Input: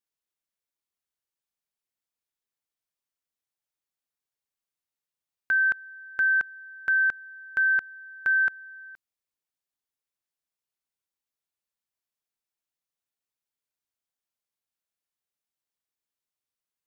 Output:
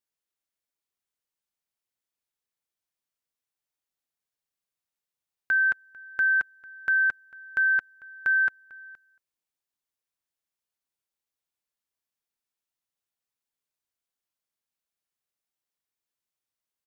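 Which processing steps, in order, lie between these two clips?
slap from a distant wall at 39 metres, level −20 dB

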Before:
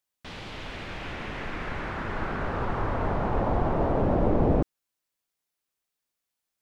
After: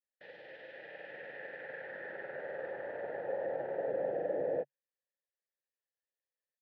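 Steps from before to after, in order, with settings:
formant filter e
granular cloud, pitch spread up and down by 0 semitones
loudspeaker in its box 140–5,000 Hz, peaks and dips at 140 Hz +6 dB, 240 Hz −5 dB, 840 Hz +8 dB, 1,700 Hz +6 dB, 2,600 Hz −8 dB
level +1 dB

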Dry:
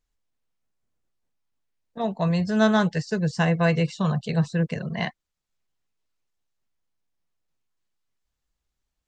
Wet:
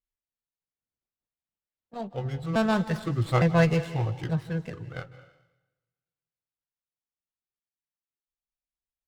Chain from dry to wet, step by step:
pitch shifter gated in a rhythm −5 semitones, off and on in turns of 434 ms
source passing by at 0:03.42, 7 m/s, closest 4 metres
convolution reverb RT60 1.0 s, pre-delay 149 ms, DRR 13.5 dB
windowed peak hold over 5 samples

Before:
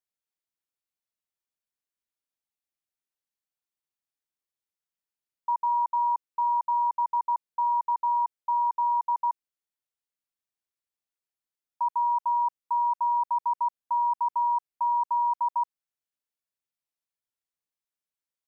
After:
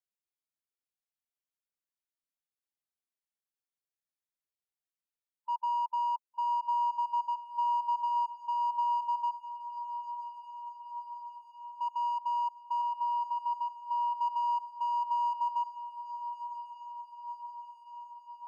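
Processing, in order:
harmonic and percussive parts rebalanced percussive −11 dB
0:12.81–0:14.17: dynamic equaliser 740 Hz, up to −6 dB, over −42 dBFS, Q 2.1
in parallel at −6.5 dB: soft clipping −32 dBFS, distortion −11 dB
on the sum: feedback delay with all-pass diffusion 1,162 ms, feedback 65%, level −11 dB
level −7 dB

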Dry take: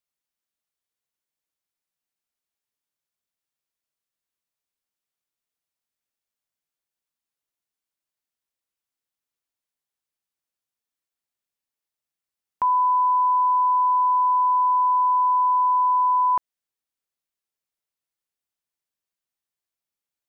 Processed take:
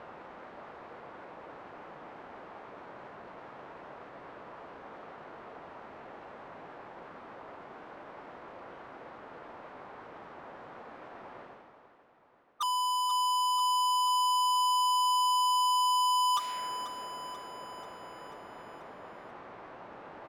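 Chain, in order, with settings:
low-pass that shuts in the quiet parts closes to 860 Hz, open at −18 dBFS
reversed playback
upward compression, threshold −33 dBFS
reversed playback
formants moved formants +3 semitones
mid-hump overdrive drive 25 dB, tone 1,000 Hz, clips at −9.5 dBFS
gain into a clipping stage and back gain 32.5 dB
on a send: repeating echo 487 ms, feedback 60%, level −14.5 dB
on the sum: level +3 dB

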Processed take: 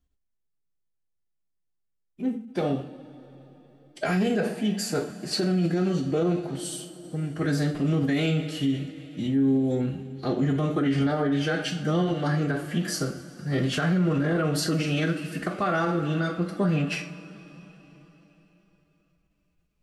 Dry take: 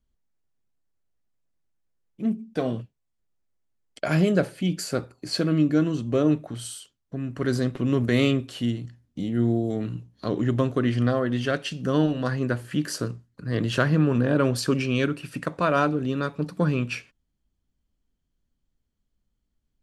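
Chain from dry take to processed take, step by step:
convolution reverb, pre-delay 3 ms, DRR 2 dB
phase-vocoder pitch shift with formants kept +2.5 semitones
brickwall limiter −16.5 dBFS, peak gain reduction 10.5 dB

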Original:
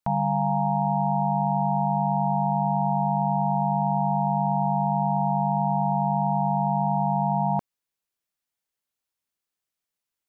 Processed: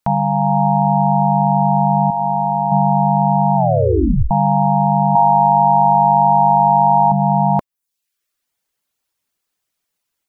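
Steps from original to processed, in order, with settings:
0:02.10–0:02.72: low-shelf EQ 420 Hz −8.5 dB
automatic gain control gain up to 3 dB
0:05.15–0:07.12: octave-band graphic EQ 125/250/1,000 Hz −3/−7/+6 dB
reverb reduction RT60 0.6 s
0:03.56: tape stop 0.75 s
level +8.5 dB

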